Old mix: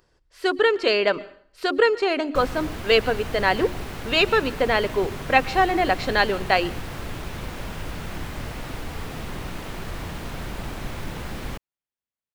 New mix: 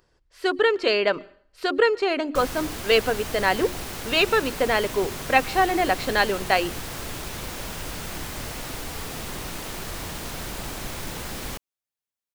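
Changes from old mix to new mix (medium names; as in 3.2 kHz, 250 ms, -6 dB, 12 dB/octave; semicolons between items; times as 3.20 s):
speech: send -6.5 dB; background: add tone controls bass -4 dB, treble +10 dB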